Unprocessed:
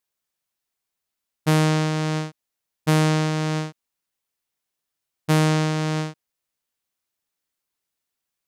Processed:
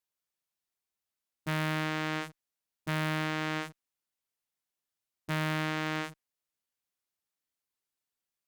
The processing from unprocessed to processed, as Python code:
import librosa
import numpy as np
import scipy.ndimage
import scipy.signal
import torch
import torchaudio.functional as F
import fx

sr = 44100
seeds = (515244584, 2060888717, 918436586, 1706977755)

y = 10.0 ** (-26.0 / 20.0) * np.tanh(x / 10.0 ** (-26.0 / 20.0))
y = fx.dynamic_eq(y, sr, hz=1800.0, q=1.3, threshold_db=-50.0, ratio=4.0, max_db=4)
y = fx.cheby_harmonics(y, sr, harmonics=(3,), levels_db=(-7,), full_scale_db=-22.5)
y = F.gain(torch.from_numpy(y), 2.0).numpy()